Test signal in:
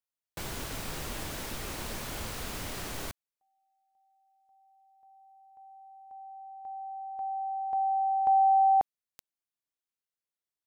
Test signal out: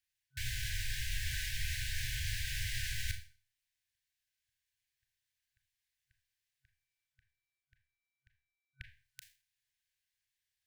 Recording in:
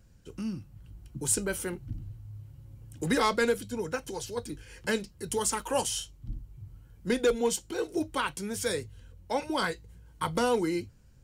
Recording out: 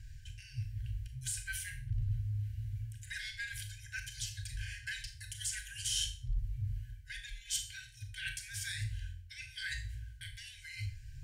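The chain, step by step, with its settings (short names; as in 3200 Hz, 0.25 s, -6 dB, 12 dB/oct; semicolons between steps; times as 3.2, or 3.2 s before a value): limiter -22.5 dBFS; high shelf 5800 Hz -9 dB; reverse; compressor 6:1, threshold -42 dBFS; reverse; FFT band-reject 130–1500 Hz; Schroeder reverb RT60 0.39 s, combs from 27 ms, DRR 6 dB; gain +10 dB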